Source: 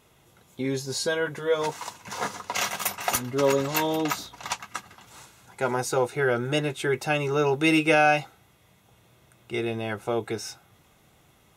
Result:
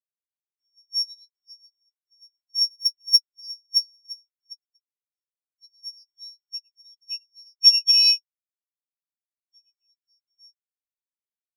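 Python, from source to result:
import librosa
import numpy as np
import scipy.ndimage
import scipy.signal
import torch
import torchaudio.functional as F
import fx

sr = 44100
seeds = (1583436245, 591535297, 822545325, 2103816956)

y = np.r_[np.sort(x[:len(x) // 8 * 8].reshape(-1, 8), axis=1).ravel(), x[len(x) // 8 * 8:]]
y = scipy.signal.sosfilt(scipy.signal.ellip(4, 1.0, 40, 2500.0, 'highpass', fs=sr, output='sos'), y)
y = fx.spectral_expand(y, sr, expansion=4.0)
y = y * 10.0 ** (3.0 / 20.0)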